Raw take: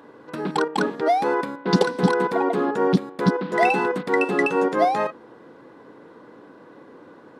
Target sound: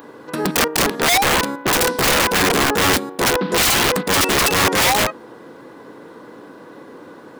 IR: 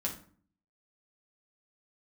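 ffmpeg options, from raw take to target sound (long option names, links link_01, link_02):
-af "aemphasis=mode=production:type=50kf,aeval=exprs='(mod(7.08*val(0)+1,2)-1)/7.08':channel_layout=same,volume=6.5dB"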